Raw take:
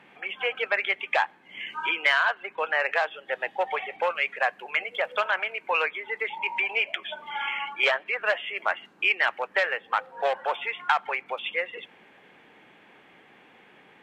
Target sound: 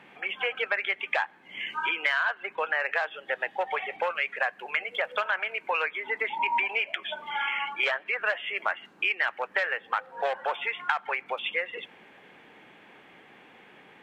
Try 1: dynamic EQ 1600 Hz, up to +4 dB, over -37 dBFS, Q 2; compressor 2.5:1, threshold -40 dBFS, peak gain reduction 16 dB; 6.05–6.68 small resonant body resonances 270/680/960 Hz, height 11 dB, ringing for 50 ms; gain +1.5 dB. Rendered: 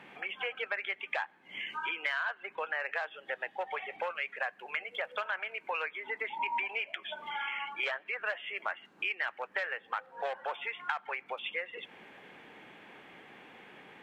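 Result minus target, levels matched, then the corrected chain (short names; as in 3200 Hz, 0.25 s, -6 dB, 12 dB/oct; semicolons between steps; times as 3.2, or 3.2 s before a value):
compressor: peak gain reduction +7 dB
dynamic EQ 1600 Hz, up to +4 dB, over -37 dBFS, Q 2; compressor 2.5:1, threshold -28 dBFS, peak gain reduction 9 dB; 6.05–6.68 small resonant body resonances 270/680/960 Hz, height 11 dB, ringing for 50 ms; gain +1.5 dB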